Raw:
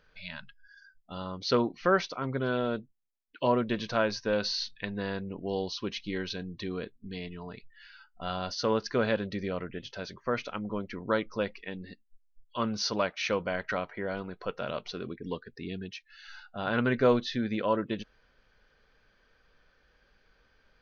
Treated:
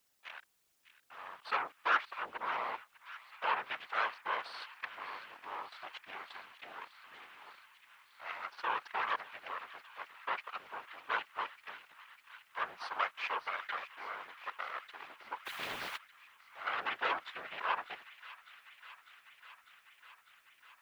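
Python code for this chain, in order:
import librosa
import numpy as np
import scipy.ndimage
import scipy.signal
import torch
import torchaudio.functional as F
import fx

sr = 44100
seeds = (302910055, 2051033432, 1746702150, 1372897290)

p1 = fx.wiener(x, sr, points=15)
p2 = fx.cheby_harmonics(p1, sr, harmonics=(3, 8), levels_db=(-29, -13), full_scale_db=-12.0)
p3 = fx.high_shelf(p2, sr, hz=2000.0, db=-8.0)
p4 = np.where(np.abs(p3) >= 10.0 ** (-44.5 / 20.0), p3, 0.0)
p5 = scipy.signal.sosfilt(scipy.signal.cheby1(2, 1.0, [1100.0, 3000.0], 'bandpass', fs=sr, output='sos'), p4)
p6 = fx.dmg_noise_colour(p5, sr, seeds[0], colour='white', level_db=-77.0)
p7 = fx.whisperise(p6, sr, seeds[1])
p8 = p7 + fx.echo_wet_highpass(p7, sr, ms=600, feedback_pct=77, hz=1800.0, wet_db=-13.0, dry=0)
p9 = fx.spectral_comp(p8, sr, ratio=2.0, at=(15.45, 15.96), fade=0.02)
y = p9 * librosa.db_to_amplitude(1.0)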